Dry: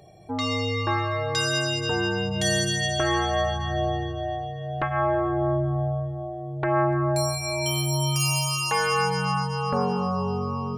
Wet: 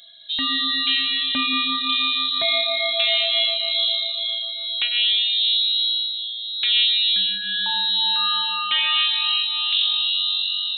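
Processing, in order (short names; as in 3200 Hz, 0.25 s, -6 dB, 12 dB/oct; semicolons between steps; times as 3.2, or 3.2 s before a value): inverted band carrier 4000 Hz; gain +3.5 dB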